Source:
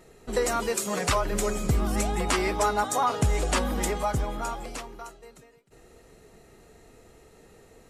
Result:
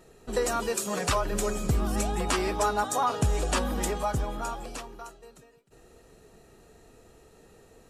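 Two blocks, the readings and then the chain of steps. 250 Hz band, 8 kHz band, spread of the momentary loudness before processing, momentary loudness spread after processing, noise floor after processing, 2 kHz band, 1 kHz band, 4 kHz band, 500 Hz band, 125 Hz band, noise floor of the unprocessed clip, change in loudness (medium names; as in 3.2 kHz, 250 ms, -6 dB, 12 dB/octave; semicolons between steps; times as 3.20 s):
-1.5 dB, -1.5 dB, 12 LU, 12 LU, -57 dBFS, -2.5 dB, -1.5 dB, -1.5 dB, -1.5 dB, -1.5 dB, -55 dBFS, -1.5 dB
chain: band-stop 2.1 kHz, Q 10; trim -1.5 dB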